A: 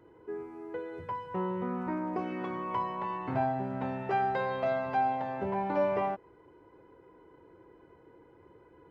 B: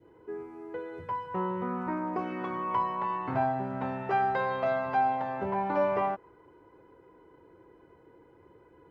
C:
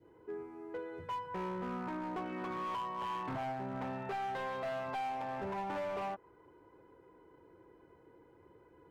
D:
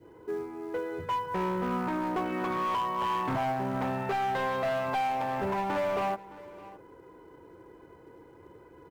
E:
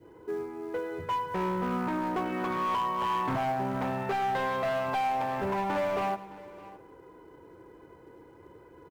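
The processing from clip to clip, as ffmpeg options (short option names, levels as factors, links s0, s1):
-af "adynamicequalizer=threshold=0.00631:dfrequency=1200:dqfactor=1.3:tfrequency=1200:tqfactor=1.3:attack=5:release=100:ratio=0.375:range=2.5:mode=boostabove:tftype=bell"
-af "alimiter=limit=0.0708:level=0:latency=1:release=394,volume=35.5,asoftclip=hard,volume=0.0282,volume=0.631"
-filter_complex "[0:a]aecho=1:1:614:0.112,asplit=2[s0][s1];[s1]acrusher=bits=4:mode=log:mix=0:aa=0.000001,volume=0.376[s2];[s0][s2]amix=inputs=2:normalize=0,volume=2"
-af "aecho=1:1:102|204|306|408|510:0.15|0.0778|0.0405|0.021|0.0109"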